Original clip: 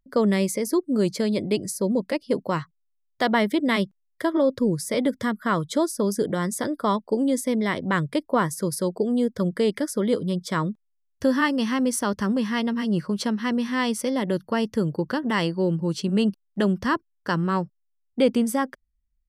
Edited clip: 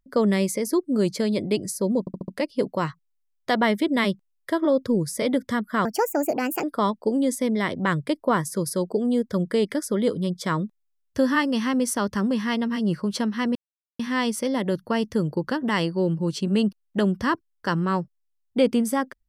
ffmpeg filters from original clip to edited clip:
-filter_complex "[0:a]asplit=8[s0][s1][s2][s3][s4][s5][s6][s7];[s0]atrim=end=2.072[s8];[s1]atrim=start=1.998:end=2.072[s9];[s2]atrim=start=1.998:end=2.072[s10];[s3]atrim=start=1.998:end=2.072[s11];[s4]atrim=start=1.998:end=5.574[s12];[s5]atrim=start=5.57:end=6.69,asetpts=PTS-STARTPTS,asetrate=63063,aresample=44100[s13];[s6]atrim=start=6.686:end=13.61,asetpts=PTS-STARTPTS,afade=t=out:st=6.92:d=0.004:c=hsin,apad=pad_dur=0.44[s14];[s7]atrim=start=13.61,asetpts=PTS-STARTPTS,afade=t=in:d=0.004:c=hsin[s15];[s8][s9]acrossfade=d=0.004:c1=hsin:c2=hsin[s16];[s16][s10]acrossfade=d=0.004:c1=hsin:c2=hsin[s17];[s17][s11]acrossfade=d=0.004:c1=hsin:c2=hsin[s18];[s18][s12]acrossfade=d=0.004:c1=hsin:c2=hsin[s19];[s19][s13]acrossfade=d=0.004:c1=hsin:c2=hsin[s20];[s14][s15]concat=n=2:v=0:a=1[s21];[s20][s21]acrossfade=d=0.004:c1=hsin:c2=hsin"

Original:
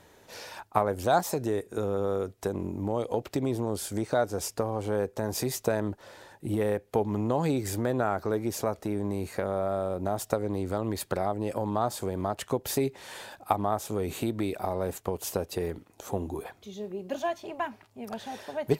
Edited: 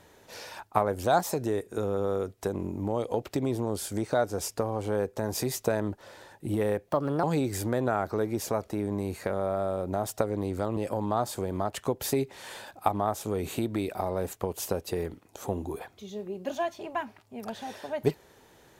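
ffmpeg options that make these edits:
-filter_complex "[0:a]asplit=4[s0][s1][s2][s3];[s0]atrim=end=6.884[s4];[s1]atrim=start=6.88:end=7.36,asetpts=PTS-STARTPTS,asetrate=59535,aresample=44100[s5];[s2]atrim=start=7.356:end=10.892[s6];[s3]atrim=start=11.408[s7];[s4][s5]acrossfade=d=0.004:c1=hsin:c2=hsin[s8];[s8][s6]acrossfade=d=0.004:c1=hsin:c2=hsin[s9];[s9][s7]acrossfade=d=0.004:c1=hsin:c2=hsin"

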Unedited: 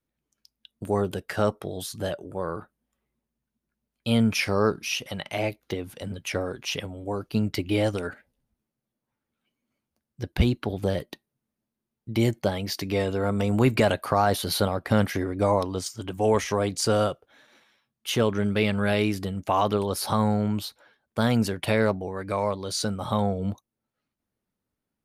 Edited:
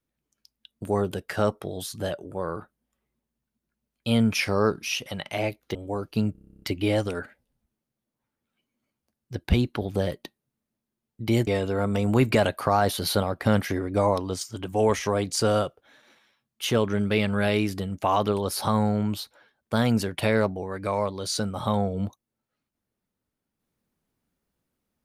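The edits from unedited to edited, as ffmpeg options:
-filter_complex "[0:a]asplit=13[s0][s1][s2][s3][s4][s5][s6][s7][s8][s9][s10][s11][s12];[s0]atrim=end=5.752[s13];[s1]atrim=start=6.928:end=7.532[s14];[s2]atrim=start=7.498:end=7.532[s15];[s3]atrim=start=7.498:end=7.532[s16];[s4]atrim=start=7.498:end=7.532[s17];[s5]atrim=start=7.498:end=7.532[s18];[s6]atrim=start=7.498:end=7.532[s19];[s7]atrim=start=7.498:end=7.532[s20];[s8]atrim=start=7.498:end=7.532[s21];[s9]atrim=start=7.498:end=7.532[s22];[s10]atrim=start=7.498:end=7.532[s23];[s11]atrim=start=7.498:end=12.352[s24];[s12]atrim=start=12.918[s25];[s13][s14]acrossfade=d=0.004:c1=hsin:c2=hsin[s26];[s26][s15]acrossfade=d=0.004:c1=hsin:c2=hsin[s27];[s27][s16]acrossfade=d=0.004:c1=hsin:c2=hsin[s28];[s28][s17]acrossfade=d=0.004:c1=hsin:c2=hsin[s29];[s29][s18]acrossfade=d=0.004:c1=hsin:c2=hsin[s30];[s30][s19]acrossfade=d=0.004:c1=hsin:c2=hsin[s31];[s31][s20]acrossfade=d=0.004:c1=hsin:c2=hsin[s32];[s32][s21]acrossfade=d=0.004:c1=hsin:c2=hsin[s33];[s33][s22]acrossfade=d=0.004:c1=hsin:c2=hsin[s34];[s34][s23]acrossfade=d=0.004:c1=hsin:c2=hsin[s35];[s35][s24]acrossfade=d=0.004:c1=hsin:c2=hsin[s36];[s36][s25]acrossfade=d=0.004:c1=hsin:c2=hsin"

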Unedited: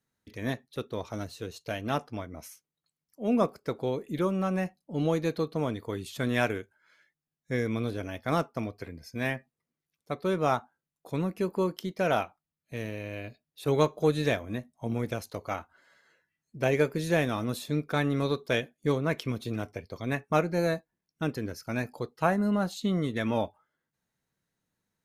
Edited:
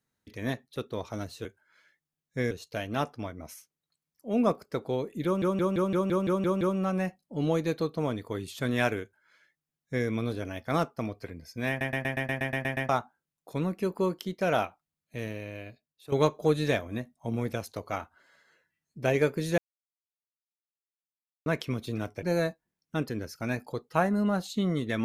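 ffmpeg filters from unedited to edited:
-filter_complex "[0:a]asplit=25[s0][s1][s2][s3][s4][s5][s6][s7][s8][s9][s10][s11][s12][s13][s14][s15][s16][s17][s18][s19][s20][s21][s22][s23][s24];[s0]atrim=end=1.452[s25];[s1]atrim=start=6.588:end=7.652[s26];[s2]atrim=start=1.448:end=4.362[s27];[s3]atrim=start=4.188:end=4.362[s28];[s4]atrim=start=4.188:end=4.362[s29];[s5]atrim=start=4.188:end=4.362[s30];[s6]atrim=start=4.188:end=4.362[s31];[s7]atrim=start=4.188:end=4.362[s32];[s8]atrim=start=4.188:end=4.362[s33];[s9]atrim=start=4.188:end=4.362[s34];[s10]atrim=start=4.188:end=9.392[s35];[s11]atrim=start=9.268:end=9.392[s36];[s12]atrim=start=9.268:end=9.392[s37];[s13]atrim=start=9.268:end=9.392[s38];[s14]atrim=start=9.268:end=9.392[s39];[s15]atrim=start=9.268:end=9.392[s40];[s16]atrim=start=9.268:end=9.392[s41];[s17]atrim=start=9.268:end=9.392[s42];[s18]atrim=start=9.268:end=9.392[s43];[s19]atrim=start=9.268:end=9.392[s44];[s20]atrim=start=10.468:end=13.7,asetpts=PTS-STARTPTS,afade=t=out:st=2.362:d=0.87:silence=0.211349[s45];[s21]atrim=start=13.7:end=17.16,asetpts=PTS-STARTPTS,afade=t=in:d=0.004:c=hsin:silence=0.211349,afade=t=out:st=3.456:d=0.004:c=hsin[s46];[s22]atrim=start=17.16:end=19.04,asetpts=PTS-STARTPTS,volume=0[s47];[s23]atrim=start=19.04:end=19.812,asetpts=PTS-STARTPTS,afade=t=in:d=0.004:c=hsin[s48];[s24]atrim=start=20.498[s49];[s25][s26]acrossfade=d=0.004:c1=hsin:c2=hsin[s50];[s50][s27]acrossfade=d=0.004:c1=hsin:c2=hsin[s51];[s51][s28]acrossfade=d=0.004:c1=hsin:c2=hsin[s52];[s52][s29]acrossfade=d=0.004:c1=hsin:c2=hsin[s53];[s53][s30]acrossfade=d=0.004:c1=hsin:c2=hsin[s54];[s54][s31]acrossfade=d=0.004:c1=hsin:c2=hsin[s55];[s55][s32]acrossfade=d=0.004:c1=hsin:c2=hsin[s56];[s56][s33]acrossfade=d=0.004:c1=hsin:c2=hsin[s57];[s57][s34]acrossfade=d=0.004:c1=hsin:c2=hsin[s58];[s58][s35]acrossfade=d=0.004:c1=hsin:c2=hsin[s59];[s59][s36]acrossfade=d=0.004:c1=hsin:c2=hsin[s60];[s60][s37]acrossfade=d=0.004:c1=hsin:c2=hsin[s61];[s61][s38]acrossfade=d=0.004:c1=hsin:c2=hsin[s62];[s62][s39]acrossfade=d=0.004:c1=hsin:c2=hsin[s63];[s63][s40]acrossfade=d=0.004:c1=hsin:c2=hsin[s64];[s64][s41]acrossfade=d=0.004:c1=hsin:c2=hsin[s65];[s65][s42]acrossfade=d=0.004:c1=hsin:c2=hsin[s66];[s66][s43]acrossfade=d=0.004:c1=hsin:c2=hsin[s67];[s67][s44]acrossfade=d=0.004:c1=hsin:c2=hsin[s68];[s45][s46][s47][s48]concat=n=4:v=0:a=1[s69];[s68][s69]acrossfade=d=0.004:c1=hsin:c2=hsin[s70];[s70][s49]acrossfade=d=0.004:c1=hsin:c2=hsin"

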